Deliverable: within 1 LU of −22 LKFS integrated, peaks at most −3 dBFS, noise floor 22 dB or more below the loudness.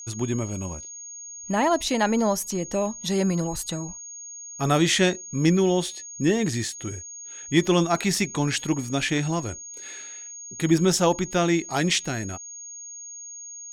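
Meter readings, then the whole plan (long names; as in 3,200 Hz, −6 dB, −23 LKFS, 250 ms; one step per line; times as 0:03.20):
interfering tone 6,600 Hz; level of the tone −37 dBFS; integrated loudness −24.0 LKFS; sample peak −7.5 dBFS; target loudness −22.0 LKFS
→ notch filter 6,600 Hz, Q 30
level +2 dB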